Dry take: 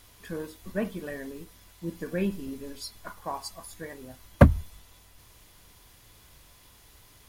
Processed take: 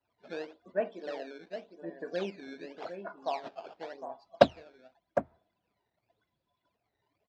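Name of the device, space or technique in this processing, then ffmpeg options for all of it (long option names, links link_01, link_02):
circuit-bent sampling toy: -filter_complex "[0:a]asettb=1/sr,asplit=3[link_01][link_02][link_03];[link_01]atrim=end=0.804[link_04];[link_02]atrim=start=0.8:end=1.39,asetpts=PTS-STARTPTS,afade=type=in:duration=0.004:curve=qsin,afade=type=out:start_time=0.586:duration=0.004:curve=qsin,highpass=frequency=200:width=0.5412,highpass=frequency=200:width=1.3066[link_05];[link_03]atrim=start=1.386[link_06];[link_04][link_05]acrossfade=duration=0.004:curve1=hsin:curve2=qsin[link_07];[link_07][link_06]acrossfade=duration=0.004:curve1=qsin:curve2=hsin,afftdn=noise_reduction=29:noise_floor=-51,asplit=2[link_08][link_09];[link_09]adelay=758,volume=-9dB,highshelf=frequency=4000:gain=-17.1[link_10];[link_08][link_10]amix=inputs=2:normalize=0,acrusher=samples=13:mix=1:aa=0.000001:lfo=1:lforange=20.8:lforate=0.89,highpass=410,equalizer=frequency=680:width_type=q:width=4:gain=9,equalizer=frequency=1100:width_type=q:width=4:gain=-7,equalizer=frequency=2000:width_type=q:width=4:gain=-5,equalizer=frequency=3100:width_type=q:width=4:gain=-5,lowpass=frequency=4300:width=0.5412,lowpass=frequency=4300:width=1.3066,volume=-1dB"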